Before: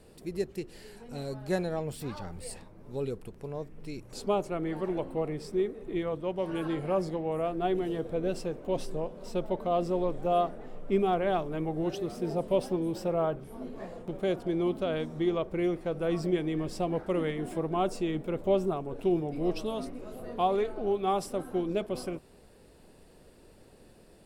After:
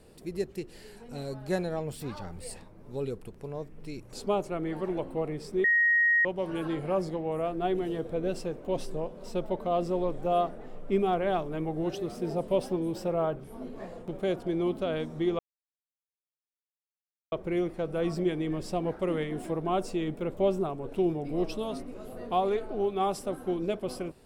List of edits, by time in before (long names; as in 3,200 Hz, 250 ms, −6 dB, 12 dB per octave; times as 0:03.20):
0:05.64–0:06.25: beep over 1,880 Hz −20 dBFS
0:15.39: splice in silence 1.93 s